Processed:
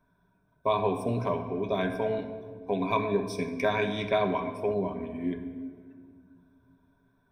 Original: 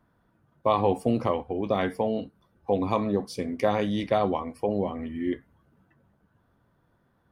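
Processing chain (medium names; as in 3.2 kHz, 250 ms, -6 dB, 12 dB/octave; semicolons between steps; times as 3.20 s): rippled EQ curve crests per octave 1.6, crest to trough 14 dB; simulated room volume 3300 m³, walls mixed, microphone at 1.1 m; 2.01–4.74 s: dynamic bell 2 kHz, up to +8 dB, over -44 dBFS, Q 1.3; trim -5.5 dB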